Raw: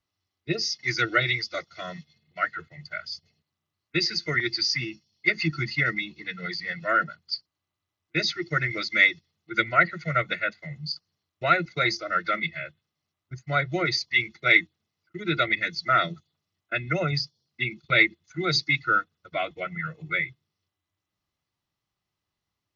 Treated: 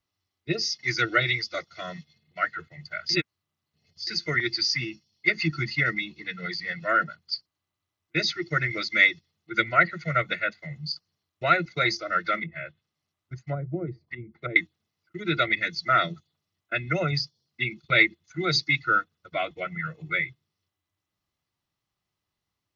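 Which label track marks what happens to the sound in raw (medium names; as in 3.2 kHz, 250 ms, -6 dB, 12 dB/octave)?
3.090000	4.070000	reverse
12.380000	14.560000	low-pass that closes with the level closes to 340 Hz, closed at -23 dBFS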